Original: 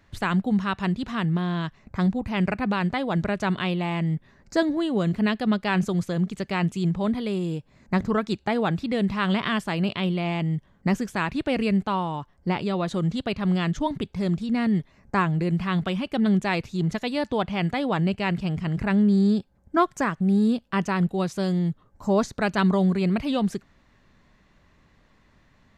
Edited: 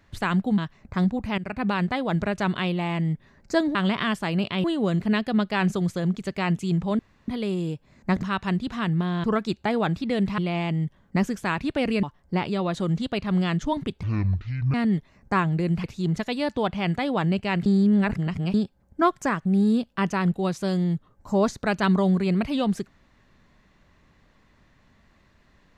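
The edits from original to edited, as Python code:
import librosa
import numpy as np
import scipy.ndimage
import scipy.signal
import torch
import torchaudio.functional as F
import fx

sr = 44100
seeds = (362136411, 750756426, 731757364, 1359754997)

y = fx.edit(x, sr, fx.move(start_s=0.58, length_s=1.02, to_s=8.06),
    fx.fade_in_from(start_s=2.4, length_s=0.27, floor_db=-17.0),
    fx.insert_room_tone(at_s=7.12, length_s=0.29),
    fx.move(start_s=9.2, length_s=0.89, to_s=4.77),
    fx.cut(start_s=11.74, length_s=0.43),
    fx.speed_span(start_s=14.17, length_s=0.39, speed=0.55),
    fx.cut(start_s=15.66, length_s=0.93),
    fx.reverse_span(start_s=18.41, length_s=0.88), tone=tone)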